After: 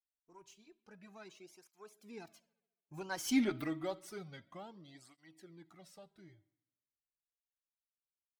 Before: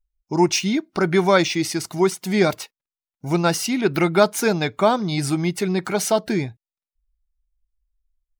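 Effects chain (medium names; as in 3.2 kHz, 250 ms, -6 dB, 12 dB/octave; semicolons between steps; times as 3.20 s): partial rectifier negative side -3 dB; Doppler pass-by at 3.38 s, 34 m/s, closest 2 m; in parallel at -3 dB: compression, threshold -45 dBFS, peak gain reduction 22.5 dB; on the sum: feedback comb 320 Hz, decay 0.42 s, harmonics all, mix 50%; on a send: bucket-brigade echo 69 ms, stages 2048, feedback 62%, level -23.5 dB; on the sum: cancelling through-zero flanger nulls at 0.29 Hz, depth 6.1 ms; trim +1 dB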